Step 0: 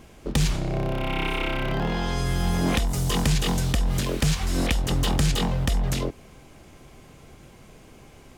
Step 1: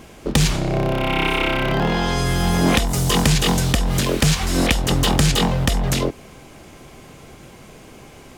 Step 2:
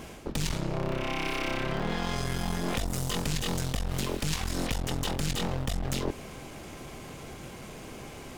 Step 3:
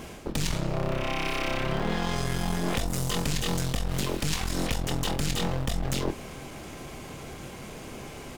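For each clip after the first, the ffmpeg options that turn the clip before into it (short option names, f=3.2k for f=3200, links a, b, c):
-af "lowshelf=f=100:g=-7,volume=8dB"
-af "areverse,acompressor=threshold=-25dB:ratio=6,areverse,aeval=exprs='clip(val(0),-1,0.0112)':c=same"
-filter_complex "[0:a]asplit=2[a][b];[b]adelay=29,volume=-12dB[c];[a][c]amix=inputs=2:normalize=0,asplit=2[d][e];[e]acrusher=bits=5:mode=log:mix=0:aa=0.000001,volume=-12dB[f];[d][f]amix=inputs=2:normalize=0"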